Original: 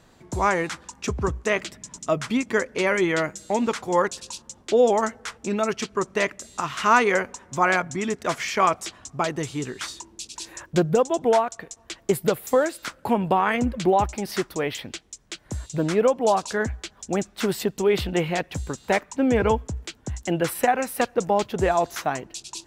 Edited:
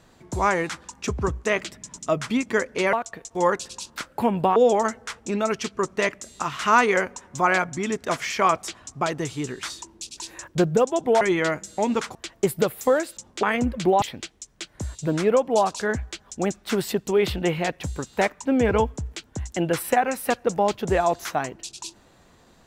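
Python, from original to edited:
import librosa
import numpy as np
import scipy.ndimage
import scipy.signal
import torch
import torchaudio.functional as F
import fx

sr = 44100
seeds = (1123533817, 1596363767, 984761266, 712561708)

y = fx.edit(x, sr, fx.swap(start_s=2.93, length_s=0.94, other_s=11.39, other_length_s=0.42),
    fx.swap(start_s=4.48, length_s=0.26, other_s=12.83, other_length_s=0.6),
    fx.cut(start_s=14.02, length_s=0.71), tone=tone)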